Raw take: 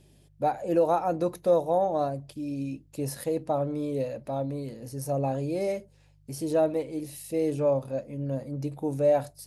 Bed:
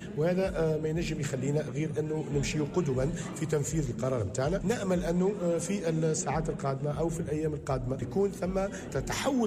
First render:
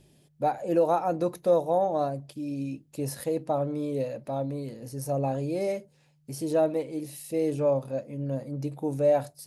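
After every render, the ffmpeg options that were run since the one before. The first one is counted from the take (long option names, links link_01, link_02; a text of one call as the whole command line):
ffmpeg -i in.wav -af "bandreject=frequency=50:width_type=h:width=4,bandreject=frequency=100:width_type=h:width=4" out.wav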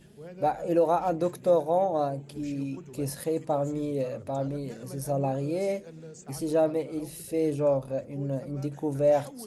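ffmpeg -i in.wav -i bed.wav -filter_complex "[1:a]volume=-16.5dB[link_01];[0:a][link_01]amix=inputs=2:normalize=0" out.wav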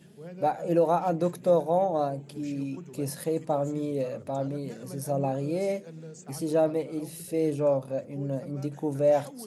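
ffmpeg -i in.wav -af "highpass=120,equalizer=frequency=170:width_type=o:width=0.23:gain=7" out.wav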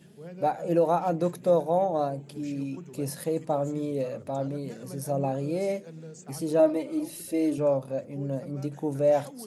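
ffmpeg -i in.wav -filter_complex "[0:a]asettb=1/sr,asplit=3[link_01][link_02][link_03];[link_01]atrim=end=6.594[link_04];[link_02]atrim=start=6.59:end=7.58,asetpts=PTS-STARTPTS,afade=type=in:duration=0.004:curve=qsin,afade=type=out:start_time=0.986:duration=0.004:curve=qsin,aecho=1:1:3.3:0.73,atrim=end_sample=43659[link_05];[link_03]atrim=start=7.576[link_06];[link_04][link_05]acrossfade=duration=0.004:curve1=hsin:curve2=qsin[link_07];[link_07][link_06]acrossfade=duration=0.004:curve1=qsin:curve2=hsin" out.wav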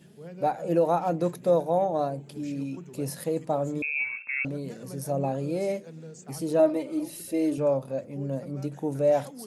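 ffmpeg -i in.wav -filter_complex "[0:a]asettb=1/sr,asplit=3[link_01][link_02][link_03];[link_01]atrim=end=3.824[link_04];[link_02]atrim=start=3.82:end=4.45,asetpts=PTS-STARTPTS,afade=type=in:duration=0.004:curve=qsin,afade=type=out:start_time=0.626:duration=0.004:curve=qsin,lowpass=frequency=2400:width_type=q:width=0.5098,lowpass=frequency=2400:width_type=q:width=0.6013,lowpass=frequency=2400:width_type=q:width=0.9,lowpass=frequency=2400:width_type=q:width=2.563,afreqshift=-2800[link_05];[link_03]atrim=start=4.446[link_06];[link_04][link_05]acrossfade=duration=0.004:curve1=hsin:curve2=qsin[link_07];[link_07][link_06]acrossfade=duration=0.004:curve1=qsin:curve2=hsin" out.wav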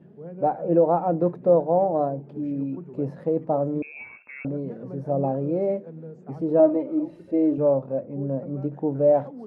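ffmpeg -i in.wav -af "lowpass=1200,equalizer=frequency=360:width_type=o:width=2.9:gain=5" out.wav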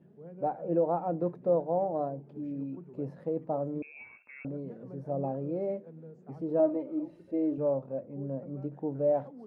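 ffmpeg -i in.wav -af "volume=-8.5dB" out.wav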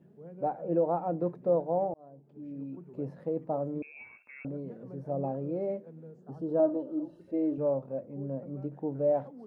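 ffmpeg -i in.wav -filter_complex "[0:a]asettb=1/sr,asplit=3[link_01][link_02][link_03];[link_01]atrim=end=6.204[link_04];[link_02]atrim=start=6.2:end=7.21,asetpts=PTS-STARTPTS,afade=type=in:duration=0.004:curve=qsin,afade=type=out:start_time=1.006:duration=0.004:curve=qsin,asuperstop=centerf=2200:order=12:qfactor=2.3[link_05];[link_03]atrim=start=7.206[link_06];[link_04][link_05]acrossfade=duration=0.004:curve1=hsin:curve2=qsin[link_07];[link_07][link_06]acrossfade=duration=0.004:curve1=qsin:curve2=hsin,asplit=2[link_08][link_09];[link_08]atrim=end=1.94,asetpts=PTS-STARTPTS,afade=type=out:start_time=1.936:duration=0.004:curve=hsin[link_10];[link_09]atrim=start=1.94,asetpts=PTS-STARTPTS,afade=type=in:duration=0.98[link_11];[link_10][link_11]concat=n=2:v=0:a=1" out.wav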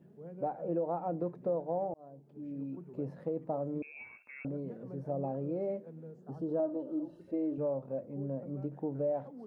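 ffmpeg -i in.wav -af "acompressor=threshold=-32dB:ratio=2.5" out.wav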